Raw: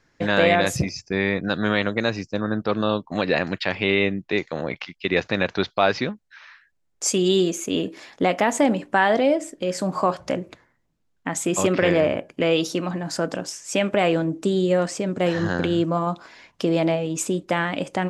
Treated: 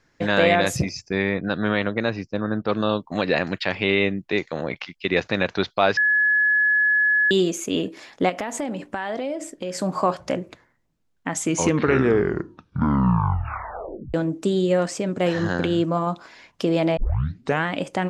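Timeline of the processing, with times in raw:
1.22–2.68 air absorption 170 m
5.97–7.31 bleep 1700 Hz -15.5 dBFS
8.29–9.74 compressor 4:1, threshold -25 dBFS
11.31 tape stop 2.83 s
16.97 tape start 0.67 s

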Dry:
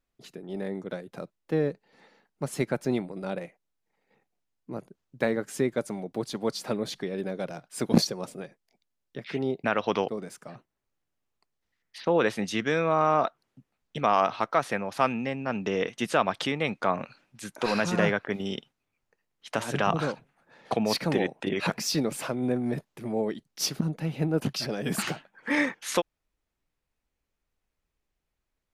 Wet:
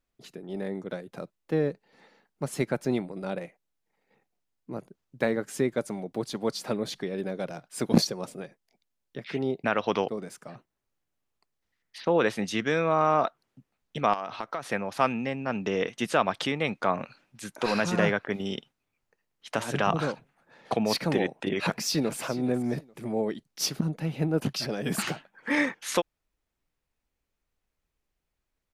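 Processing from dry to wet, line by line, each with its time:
14.13–14.72 compressor 8:1, threshold -28 dBFS
21.59–22.2 echo throw 0.42 s, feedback 25%, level -16.5 dB

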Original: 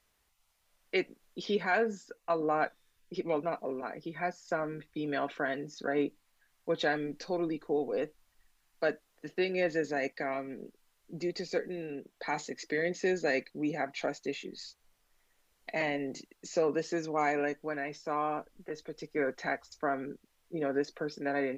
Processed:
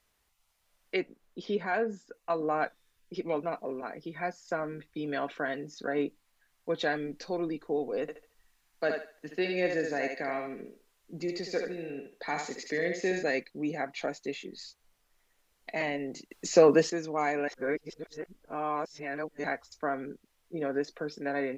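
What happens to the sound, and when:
0.96–2.14 high shelf 2000 Hz -7.5 dB
8.01–13.23 thinning echo 72 ms, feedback 32%, high-pass 410 Hz, level -3.5 dB
16.31–16.9 gain +9.5 dB
17.48–19.44 reverse

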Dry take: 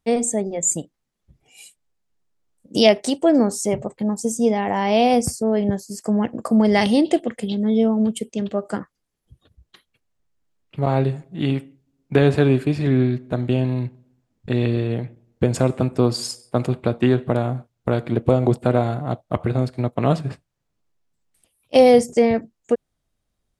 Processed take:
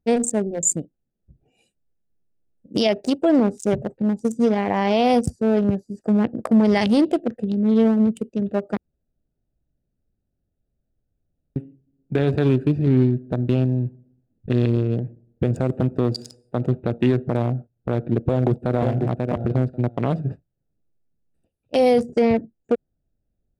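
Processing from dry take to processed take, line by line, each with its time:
8.77–11.56 room tone
18.21–19.02 echo throw 0.54 s, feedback 15%, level -7.5 dB
whole clip: Wiener smoothing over 41 samples; limiter -11.5 dBFS; gain +2 dB

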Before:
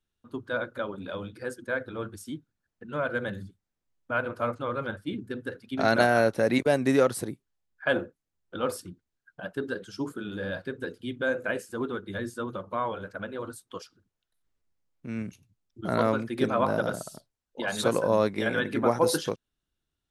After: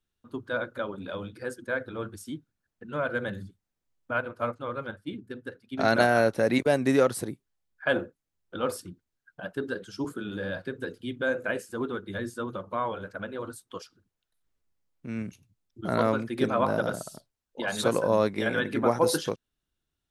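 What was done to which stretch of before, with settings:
4.13–5.8 upward expander, over -42 dBFS
10.04–10.99 three-band squash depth 40%

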